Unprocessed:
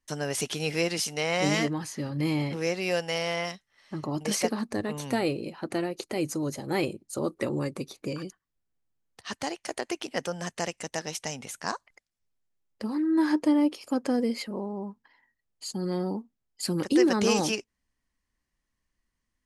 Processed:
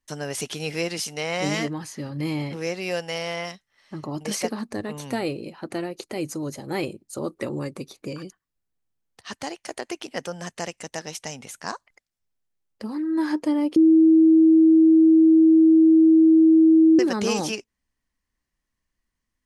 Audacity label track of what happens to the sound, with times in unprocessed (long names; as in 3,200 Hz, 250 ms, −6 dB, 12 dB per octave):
13.760000	16.990000	beep over 321 Hz −11 dBFS